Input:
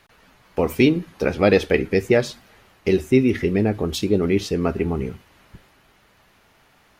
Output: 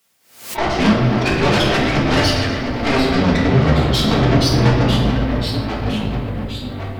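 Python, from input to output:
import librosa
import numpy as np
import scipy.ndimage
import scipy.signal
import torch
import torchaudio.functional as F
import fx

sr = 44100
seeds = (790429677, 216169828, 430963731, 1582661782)

p1 = fx.bin_expand(x, sr, power=3.0)
p2 = fx.fuzz(p1, sr, gain_db=44.0, gate_db=-47.0)
p3 = fx.pitch_keep_formants(p2, sr, semitones=-6.0)
p4 = scipy.signal.sosfilt(scipy.signal.butter(8, 5600.0, 'lowpass', fs=sr, output='sos'), p3)
p5 = p4 + fx.echo_feedback(p4, sr, ms=122, feedback_pct=52, wet_db=-17.0, dry=0)
p6 = fx.quant_dither(p5, sr, seeds[0], bits=12, dither='triangular')
p7 = fx.over_compress(p6, sr, threshold_db=-28.0, ratio=-1.0)
p8 = p6 + F.gain(torch.from_numpy(p7), -3.0).numpy()
p9 = scipy.signal.sosfilt(scipy.signal.butter(2, 89.0, 'highpass', fs=sr, output='sos'), p8)
p10 = fx.tube_stage(p9, sr, drive_db=14.0, bias=0.4)
p11 = fx.echo_pitch(p10, sr, ms=467, semitones=-2, count=2, db_per_echo=-6.0)
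p12 = fx.room_shoebox(p11, sr, seeds[1], volume_m3=320.0, walls='mixed', distance_m=1.6)
p13 = fx.pre_swell(p12, sr, db_per_s=110.0)
y = F.gain(torch.from_numpy(p13), -2.0).numpy()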